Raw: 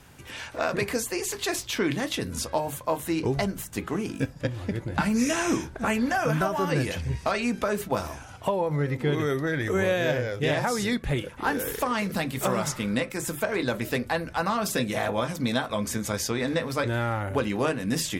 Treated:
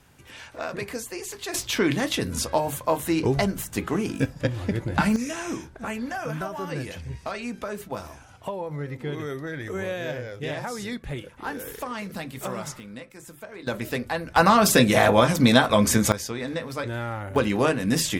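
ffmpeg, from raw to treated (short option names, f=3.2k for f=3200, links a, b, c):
-af "asetnsamples=n=441:p=0,asendcmd='1.54 volume volume 3.5dB;5.16 volume volume -6dB;12.8 volume volume -13.5dB;13.67 volume volume -1dB;14.36 volume volume 9.5dB;16.12 volume volume -3.5dB;17.36 volume volume 4dB',volume=-5dB"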